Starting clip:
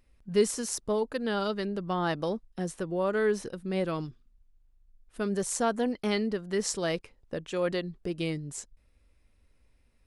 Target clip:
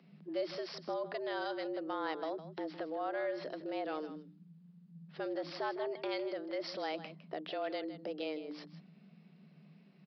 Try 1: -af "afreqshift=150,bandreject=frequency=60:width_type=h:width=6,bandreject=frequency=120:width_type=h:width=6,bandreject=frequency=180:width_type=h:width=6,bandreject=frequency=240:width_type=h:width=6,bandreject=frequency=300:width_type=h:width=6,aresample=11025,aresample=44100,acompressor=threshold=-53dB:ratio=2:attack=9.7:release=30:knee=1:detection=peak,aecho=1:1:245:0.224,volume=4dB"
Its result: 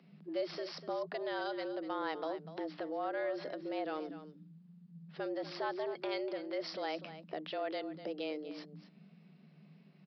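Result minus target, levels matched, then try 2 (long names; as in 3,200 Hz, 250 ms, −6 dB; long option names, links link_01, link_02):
echo 87 ms late
-af "afreqshift=150,bandreject=frequency=60:width_type=h:width=6,bandreject=frequency=120:width_type=h:width=6,bandreject=frequency=180:width_type=h:width=6,bandreject=frequency=240:width_type=h:width=6,bandreject=frequency=300:width_type=h:width=6,aresample=11025,aresample=44100,acompressor=threshold=-53dB:ratio=2:attack=9.7:release=30:knee=1:detection=peak,aecho=1:1:158:0.224,volume=4dB"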